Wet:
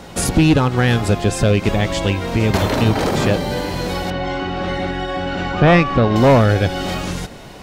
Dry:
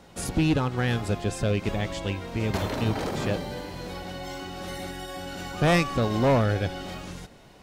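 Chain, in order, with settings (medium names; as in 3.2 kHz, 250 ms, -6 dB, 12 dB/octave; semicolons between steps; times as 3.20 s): 4.10–6.16 s: low-pass 2.9 kHz 12 dB/octave; in parallel at +2.5 dB: compression, threshold -33 dBFS, peak gain reduction 14 dB; on the sum: trim +7.5 dB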